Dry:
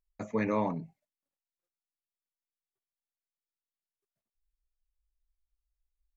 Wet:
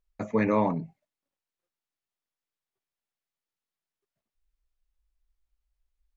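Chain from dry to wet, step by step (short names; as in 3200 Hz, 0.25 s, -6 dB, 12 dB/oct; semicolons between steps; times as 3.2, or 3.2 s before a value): high shelf 6200 Hz -11 dB; gain +5.5 dB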